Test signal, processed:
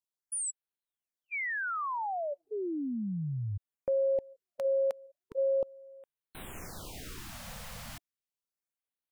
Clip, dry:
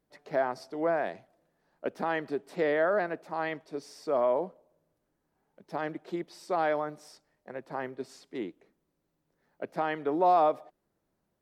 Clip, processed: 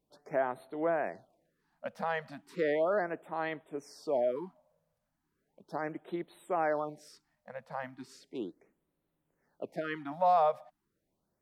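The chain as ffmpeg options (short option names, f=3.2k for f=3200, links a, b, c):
-af "afftfilt=real='re*(1-between(b*sr/1024,310*pow(6200/310,0.5+0.5*sin(2*PI*0.36*pts/sr))/1.41,310*pow(6200/310,0.5+0.5*sin(2*PI*0.36*pts/sr))*1.41))':imag='im*(1-between(b*sr/1024,310*pow(6200/310,0.5+0.5*sin(2*PI*0.36*pts/sr))/1.41,310*pow(6200/310,0.5+0.5*sin(2*PI*0.36*pts/sr))*1.41))':win_size=1024:overlap=0.75,volume=-2.5dB"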